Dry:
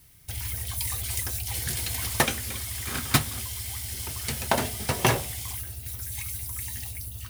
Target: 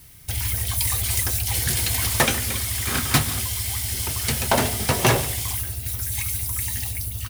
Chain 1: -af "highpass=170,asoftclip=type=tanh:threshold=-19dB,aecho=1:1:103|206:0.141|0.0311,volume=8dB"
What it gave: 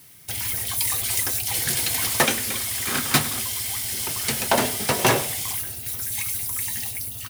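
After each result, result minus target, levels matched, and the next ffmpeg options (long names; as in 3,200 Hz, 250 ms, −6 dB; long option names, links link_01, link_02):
125 Hz band −8.0 dB; echo 39 ms early
-af "asoftclip=type=tanh:threshold=-19dB,aecho=1:1:103|206:0.141|0.0311,volume=8dB"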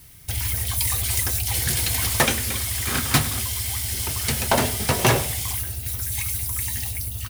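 echo 39 ms early
-af "asoftclip=type=tanh:threshold=-19dB,aecho=1:1:142|284:0.141|0.0311,volume=8dB"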